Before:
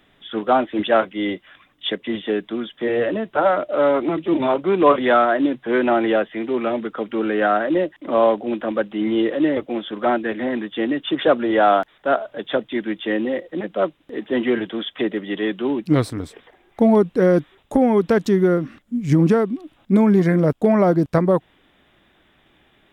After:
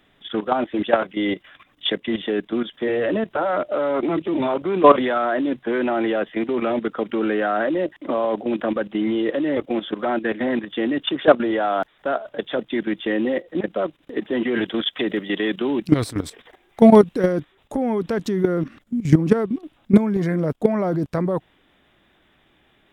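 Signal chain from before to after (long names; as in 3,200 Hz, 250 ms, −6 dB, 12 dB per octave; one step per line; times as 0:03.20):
0:14.54–0:17.33: high-shelf EQ 2,400 Hz +6 dB
output level in coarse steps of 13 dB
level +5 dB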